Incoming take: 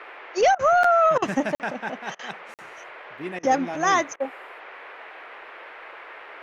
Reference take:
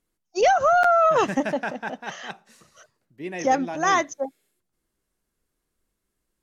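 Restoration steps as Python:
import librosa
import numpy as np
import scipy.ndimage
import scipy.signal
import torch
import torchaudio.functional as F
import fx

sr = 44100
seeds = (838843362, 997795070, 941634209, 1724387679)

y = fx.fix_interpolate(x, sr, at_s=(1.55, 2.54), length_ms=48.0)
y = fx.fix_interpolate(y, sr, at_s=(0.55, 1.18, 2.15, 3.39, 4.16), length_ms=40.0)
y = fx.noise_reduce(y, sr, print_start_s=5.1, print_end_s=5.6, reduce_db=30.0)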